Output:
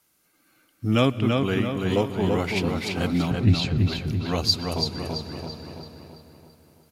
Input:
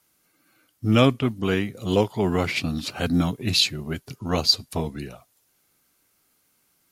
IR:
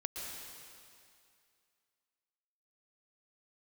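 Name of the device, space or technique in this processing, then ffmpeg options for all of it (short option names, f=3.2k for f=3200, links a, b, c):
compressed reverb return: -filter_complex "[0:a]asettb=1/sr,asplit=3[a][b][c];[a]atrim=end=3.314[d];[b]atrim=start=3.31:end=3.78,asetpts=PTS-STARTPTS,afade=t=in:d=0.004:c=qsin,afade=t=out:st=0.466:d=0.004:c=qsin,aemphasis=mode=reproduction:type=riaa[e];[c]atrim=start=3.776[f];[d][e]acrossfade=d=0.004:c1=hsin:c2=qsin[g];[g][f]acrossfade=d=0.004:c1=qsin:c2=hsin,asplit=2[h][i];[i]adelay=334,lowpass=f=4.8k:p=1,volume=-3.5dB,asplit=2[j][k];[k]adelay=334,lowpass=f=4.8k:p=1,volume=0.51,asplit=2[l][m];[m]adelay=334,lowpass=f=4.8k:p=1,volume=0.51,asplit=2[n][o];[o]adelay=334,lowpass=f=4.8k:p=1,volume=0.51,asplit=2[p][q];[q]adelay=334,lowpass=f=4.8k:p=1,volume=0.51,asplit=2[r][s];[s]adelay=334,lowpass=f=4.8k:p=1,volume=0.51,asplit=2[t][u];[u]adelay=334,lowpass=f=4.8k:p=1,volume=0.51[v];[h][j][l][n][p][r][t][v]amix=inputs=8:normalize=0,asplit=2[w][x];[1:a]atrim=start_sample=2205[y];[x][y]afir=irnorm=-1:irlink=0,acompressor=threshold=-29dB:ratio=6,volume=-3dB[z];[w][z]amix=inputs=2:normalize=0,volume=-4dB"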